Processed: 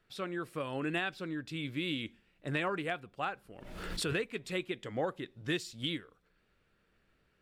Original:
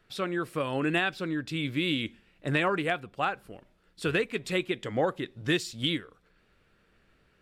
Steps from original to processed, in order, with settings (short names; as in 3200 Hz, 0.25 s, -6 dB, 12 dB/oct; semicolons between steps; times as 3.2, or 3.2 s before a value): 3.53–4.22 backwards sustainer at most 38 dB/s; gain -7 dB